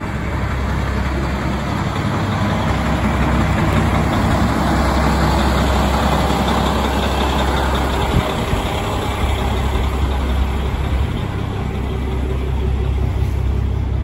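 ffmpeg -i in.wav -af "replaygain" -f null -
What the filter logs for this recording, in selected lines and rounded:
track_gain = +1.7 dB
track_peak = 0.556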